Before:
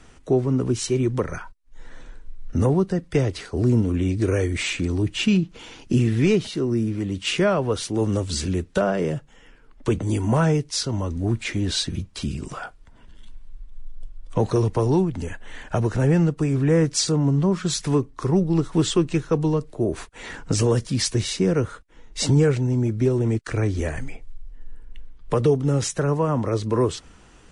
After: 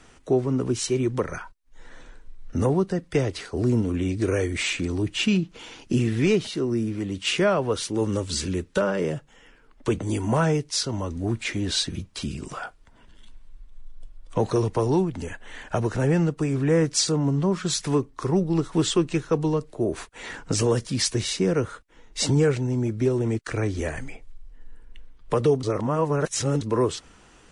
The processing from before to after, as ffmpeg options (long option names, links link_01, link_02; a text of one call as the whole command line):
ffmpeg -i in.wav -filter_complex "[0:a]asettb=1/sr,asplit=3[link_01][link_02][link_03];[link_01]atrim=end=7.744[link_04];[link_02]atrim=start=7.74:end=9.03,asetpts=PTS-STARTPTS,afade=type=in:duration=0.004:curve=qsin,afade=type=out:start_time=1.286:duration=0.004:curve=qsin,asuperstop=centerf=700:order=4:qfactor=5.1[link_05];[link_03]atrim=start=9.026[link_06];[link_04][link_05]acrossfade=duration=0.004:curve1=hsin:curve2=qsin[link_07];[link_07][link_06]acrossfade=duration=0.004:curve1=qsin:curve2=hsin,asplit=3[link_08][link_09][link_10];[link_08]atrim=end=25.632[link_11];[link_09]atrim=start=25.628:end=26.612,asetpts=PTS-STARTPTS,areverse[link_12];[link_10]atrim=start=26.608[link_13];[link_11][link_12]acrossfade=duration=0.004:curve1=hsin:curve2=hsin[link_14];[link_14][link_13]acrossfade=duration=0.004:curve1=hsin:curve2=hsin,lowshelf=frequency=200:gain=-6" out.wav